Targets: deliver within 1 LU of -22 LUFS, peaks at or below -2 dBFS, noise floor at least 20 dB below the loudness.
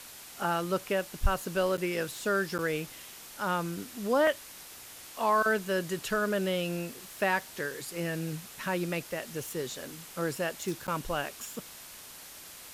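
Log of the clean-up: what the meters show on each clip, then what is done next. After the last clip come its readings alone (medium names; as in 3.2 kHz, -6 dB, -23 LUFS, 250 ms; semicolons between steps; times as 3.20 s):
dropouts 3; longest dropout 8.9 ms; noise floor -48 dBFS; noise floor target -52 dBFS; loudness -31.5 LUFS; peak level -12.5 dBFS; loudness target -22.0 LUFS
-> interpolate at 1.77/2.58/10.87 s, 8.9 ms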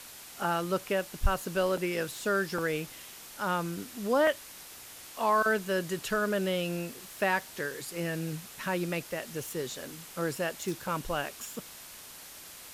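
dropouts 0; noise floor -48 dBFS; noise floor target -52 dBFS
-> noise reduction 6 dB, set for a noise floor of -48 dBFS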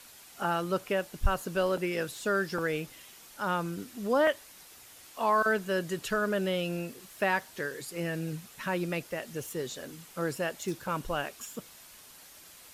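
noise floor -53 dBFS; loudness -32.0 LUFS; peak level -12.5 dBFS; loudness target -22.0 LUFS
-> trim +10 dB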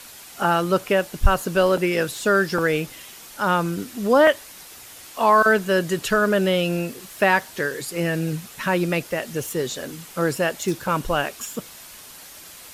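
loudness -22.0 LUFS; peak level -2.5 dBFS; noise floor -43 dBFS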